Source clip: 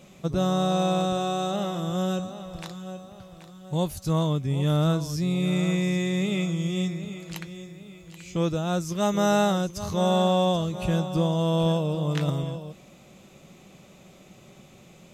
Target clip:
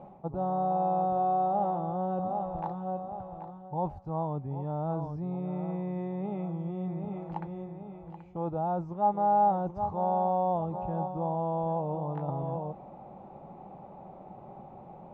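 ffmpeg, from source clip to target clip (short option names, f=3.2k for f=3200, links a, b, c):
-af "areverse,acompressor=threshold=-33dB:ratio=5,areverse,lowpass=f=840:t=q:w=8.6"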